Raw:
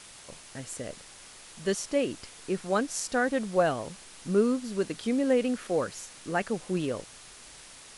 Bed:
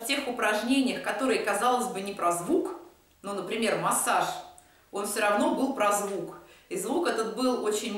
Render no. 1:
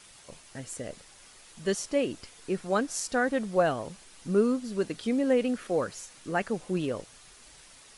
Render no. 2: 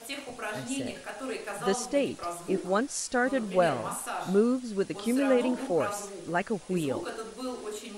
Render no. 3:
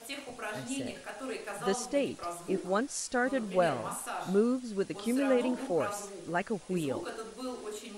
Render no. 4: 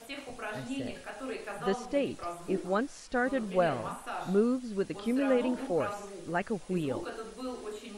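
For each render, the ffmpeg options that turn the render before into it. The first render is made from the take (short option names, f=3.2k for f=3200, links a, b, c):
-af "afftdn=nr=6:nf=-50"
-filter_complex "[1:a]volume=-9.5dB[a];[0:a][a]amix=inputs=2:normalize=0"
-af "volume=-3dB"
-filter_complex "[0:a]acrossover=split=3800[a][b];[b]acompressor=threshold=-53dB:ratio=4:attack=1:release=60[c];[a][c]amix=inputs=2:normalize=0,lowshelf=f=74:g=8.5"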